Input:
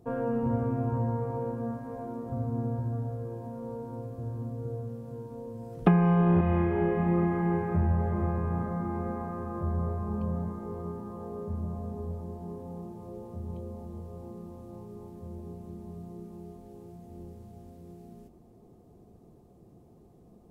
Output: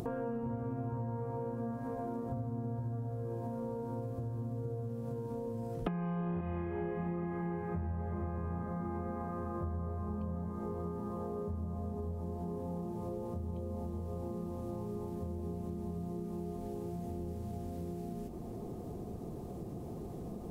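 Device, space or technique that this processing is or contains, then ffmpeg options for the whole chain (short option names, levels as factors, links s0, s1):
upward and downward compression: -af "acompressor=mode=upward:threshold=0.0224:ratio=2.5,acompressor=threshold=0.0141:ratio=6,volume=1.26"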